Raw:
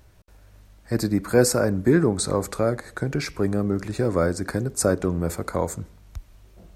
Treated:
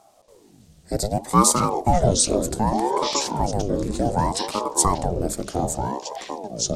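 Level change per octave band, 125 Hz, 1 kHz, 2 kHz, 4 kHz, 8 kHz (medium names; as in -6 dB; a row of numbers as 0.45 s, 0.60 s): 0.0 dB, +11.5 dB, -6.5 dB, +7.5 dB, +7.5 dB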